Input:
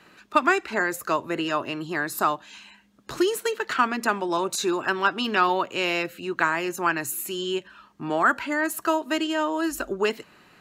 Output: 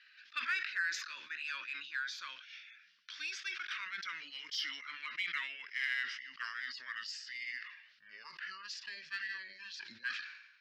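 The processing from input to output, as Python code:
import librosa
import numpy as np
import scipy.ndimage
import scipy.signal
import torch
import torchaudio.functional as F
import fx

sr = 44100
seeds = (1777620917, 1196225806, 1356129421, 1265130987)

p1 = fx.pitch_glide(x, sr, semitones=-9.5, runs='starting unshifted')
p2 = scipy.signal.sosfilt(scipy.signal.ellip(3, 1.0, 40, [1600.0, 5200.0], 'bandpass', fs=sr, output='sos'), p1)
p3 = 10.0 ** (-31.5 / 20.0) * np.tanh(p2 / 10.0 ** (-31.5 / 20.0))
p4 = p2 + F.gain(torch.from_numpy(p3), -10.5).numpy()
p5 = fx.sustainer(p4, sr, db_per_s=63.0)
y = F.gain(torch.from_numpy(p5), -7.0).numpy()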